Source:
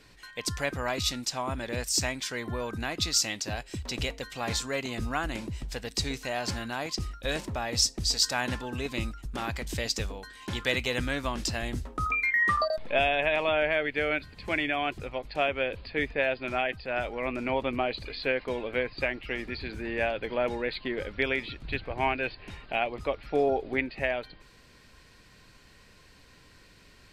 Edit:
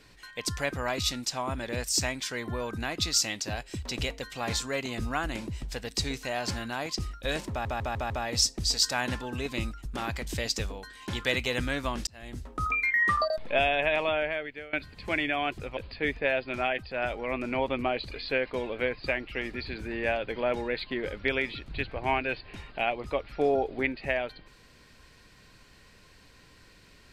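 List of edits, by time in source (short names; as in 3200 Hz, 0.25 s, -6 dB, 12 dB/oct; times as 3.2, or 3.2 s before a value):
7.5 stutter 0.15 s, 5 plays
11.47–12.05 fade in
13.38–14.13 fade out, to -22.5 dB
15.17–15.71 cut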